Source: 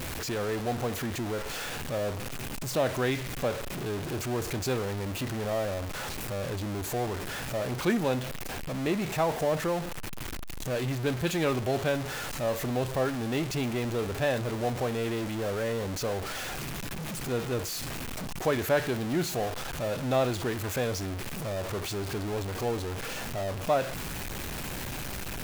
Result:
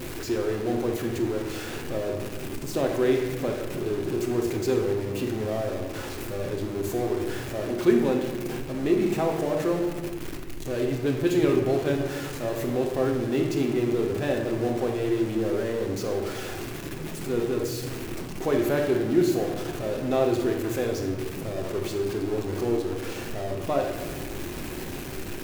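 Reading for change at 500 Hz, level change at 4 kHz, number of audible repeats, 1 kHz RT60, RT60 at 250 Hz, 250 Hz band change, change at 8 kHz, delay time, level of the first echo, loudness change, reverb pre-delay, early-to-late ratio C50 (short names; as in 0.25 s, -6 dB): +5.0 dB, -2.0 dB, none, 1.2 s, 2.4 s, +6.5 dB, -2.5 dB, none, none, +4.0 dB, 4 ms, 4.5 dB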